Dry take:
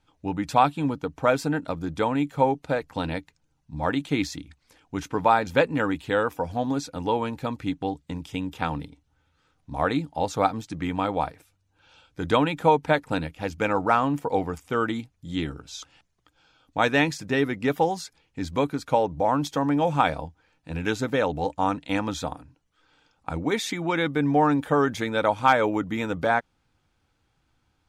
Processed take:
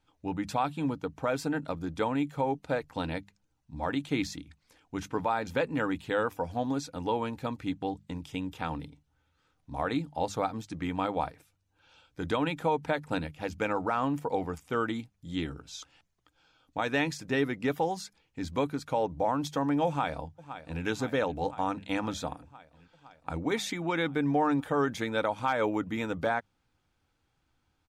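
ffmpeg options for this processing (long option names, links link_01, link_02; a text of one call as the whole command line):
ffmpeg -i in.wav -filter_complex "[0:a]asplit=2[link_01][link_02];[link_02]afade=type=in:start_time=19.87:duration=0.01,afade=type=out:start_time=20.83:duration=0.01,aecho=0:1:510|1020|1530|2040|2550|3060|3570|4080|4590|5100:0.149624|0.112218|0.0841633|0.0631224|0.0473418|0.0355064|0.0266298|0.0199723|0.0149793|0.0112344[link_03];[link_01][link_03]amix=inputs=2:normalize=0,bandreject=frequency=50:width_type=h:width=6,bandreject=frequency=100:width_type=h:width=6,bandreject=frequency=150:width_type=h:width=6,bandreject=frequency=200:width_type=h:width=6,alimiter=limit=-13dB:level=0:latency=1:release=93,volume=-4.5dB" out.wav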